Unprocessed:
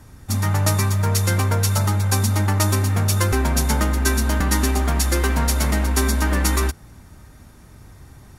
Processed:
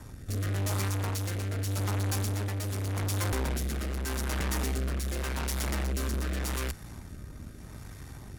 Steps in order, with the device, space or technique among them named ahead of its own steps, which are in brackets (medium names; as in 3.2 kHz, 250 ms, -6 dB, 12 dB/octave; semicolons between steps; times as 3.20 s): overdriven rotary cabinet (valve stage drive 34 dB, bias 0.7; rotary cabinet horn 0.85 Hz); trim +6 dB